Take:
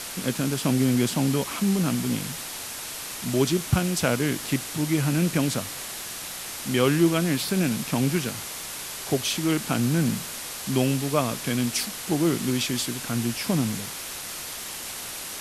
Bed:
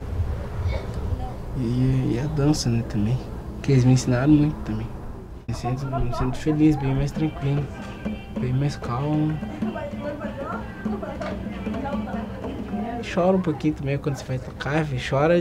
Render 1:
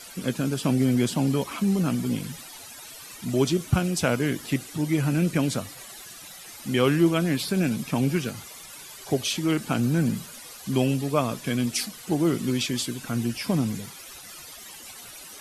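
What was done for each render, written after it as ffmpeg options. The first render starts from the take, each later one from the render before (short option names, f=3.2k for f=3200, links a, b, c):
-af "afftdn=nr=14:nf=-36"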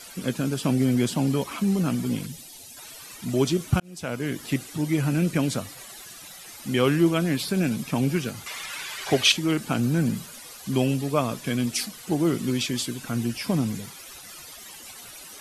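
-filter_complex "[0:a]asettb=1/sr,asplit=3[a][b][c];[a]atrim=end=2.264[d];[b]atrim=start=2.26:end=2.77,asetpts=PTS-STARTPTS,afade=t=in:d=0.004:c=qsin,afade=t=out:st=0.506:d=0.004:c=qsin,equalizer=f=1.3k:t=o:w=1.6:g=-13.5[e];[c]atrim=start=2.766[f];[d][e]acrossfade=d=0.004:c1=hsin:c2=qsin[g];[g][f]acrossfade=d=0.004:c1=qsin:c2=hsin,asettb=1/sr,asplit=3[h][i][j];[h]atrim=end=8.464[k];[i]atrim=start=8.46:end=9.32,asetpts=PTS-STARTPTS,afade=t=in:d=0.004:c=qsin,afade=t=out:st=0.856:d=0.004:c=qsin,equalizer=f=2k:w=0.48:g=14.5[l];[j]atrim=start=9.316[m];[k][l]acrossfade=d=0.004:c1=hsin:c2=qsin[n];[n][m]acrossfade=d=0.004:c1=qsin:c2=hsin,asplit=2[o][p];[o]atrim=end=3.8,asetpts=PTS-STARTPTS,afade=t=out:st=3.796:d=0.004:c=hsin[q];[p]atrim=start=3.8,asetpts=PTS-STARTPTS,afade=t=in:d=0.69[r];[q][r]concat=n=2:v=0:a=1"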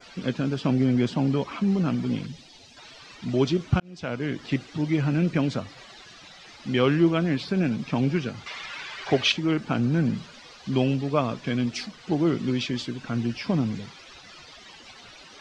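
-af "lowpass=f=5k:w=0.5412,lowpass=f=5k:w=1.3066,adynamicequalizer=threshold=0.00631:dfrequency=3900:dqfactor=1:tfrequency=3900:tqfactor=1:attack=5:release=100:ratio=0.375:range=2.5:mode=cutabove:tftype=bell"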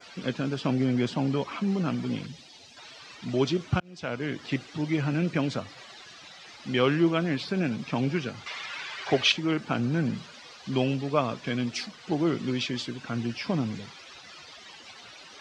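-af "highpass=93,equalizer=f=200:t=o:w=2.1:g=-4"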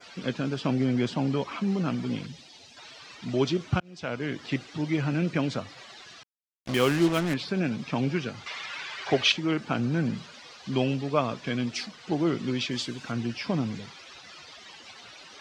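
-filter_complex "[0:a]asettb=1/sr,asplit=3[a][b][c];[a]atrim=end=6.234[d];[b]atrim=start=6.23:end=7.34,asetpts=PTS-STARTPTS,afade=t=in:d=0.004:c=qsin,afade=t=out:st=1.106:d=0.004:c=qsin,acrusher=bits=4:mix=0:aa=0.5[e];[c]atrim=start=7.336[f];[d][e]acrossfade=d=0.004:c1=hsin:c2=qsin[g];[g][f]acrossfade=d=0.004:c1=qsin:c2=hsin,asettb=1/sr,asplit=3[h][i][j];[h]atrim=end=12.714[k];[i]atrim=start=12.71:end=13.12,asetpts=PTS-STARTPTS,afade=t=in:d=0.004:c=qsin,afade=t=out:st=0.406:d=0.004:c=qsin,highshelf=f=6.3k:g=9.5[l];[j]atrim=start=13.116[m];[k][l]acrossfade=d=0.004:c1=hsin:c2=qsin[n];[n][m]acrossfade=d=0.004:c1=qsin:c2=hsin"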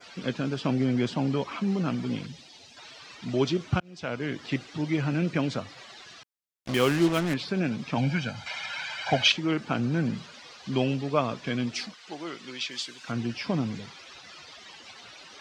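-filter_complex "[0:a]asettb=1/sr,asplit=3[a][b][c];[a]atrim=end=7.974[d];[b]atrim=start=7.97:end=9.28,asetpts=PTS-STARTPTS,afade=t=in:d=0.004:c=qsin,afade=t=out:st=1.306:d=0.004:c=qsin,aecho=1:1:1.3:0.79,atrim=end_sample=57771[e];[c]atrim=start=9.276[f];[d][e]acrossfade=d=0.004:c1=hsin:c2=qsin[g];[g][f]acrossfade=d=0.004:c1=qsin:c2=hsin,asettb=1/sr,asplit=3[h][i][j];[h]atrim=end=11.944[k];[i]atrim=start=11.94:end=13.08,asetpts=PTS-STARTPTS,afade=t=in:d=0.004:c=qsin,afade=t=out:st=1.136:d=0.004:c=qsin,highpass=f=1.4k:p=1[l];[j]atrim=start=13.076[m];[k][l]acrossfade=d=0.004:c1=hsin:c2=qsin[n];[n][m]acrossfade=d=0.004:c1=qsin:c2=hsin"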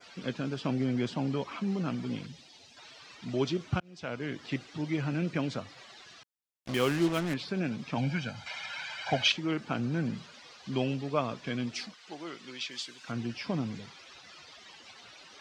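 -af "volume=-4.5dB"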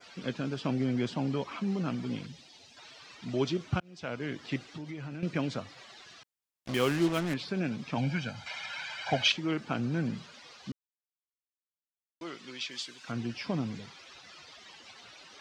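-filter_complex "[0:a]asettb=1/sr,asplit=3[a][b][c];[a]atrim=end=4.604[d];[b]atrim=start=4.6:end=5.23,asetpts=PTS-STARTPTS,afade=t=in:d=0.004:c=qsin,afade=t=out:st=0.626:d=0.004:c=qsin,acompressor=threshold=-37dB:ratio=6:attack=3.2:release=140:knee=1:detection=peak[e];[c]atrim=start=5.226[f];[d][e]acrossfade=d=0.004:c1=hsin:c2=qsin[g];[g][f]acrossfade=d=0.004:c1=qsin:c2=hsin,asplit=3[h][i][j];[h]atrim=end=10.72,asetpts=PTS-STARTPTS,afade=t=out:st=10.716:d=0.004:c=hsin[k];[i]atrim=start=10.72:end=12.21,asetpts=PTS-STARTPTS,volume=0[l];[j]atrim=start=12.21,asetpts=PTS-STARTPTS,afade=t=in:d=0.004:c=hsin[m];[k][l][m]concat=n=3:v=0:a=1"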